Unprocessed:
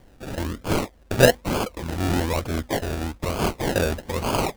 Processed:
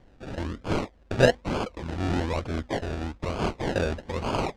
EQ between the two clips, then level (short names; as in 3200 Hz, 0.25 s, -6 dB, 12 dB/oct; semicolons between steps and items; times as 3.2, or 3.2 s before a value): air absorption 98 m; -3.5 dB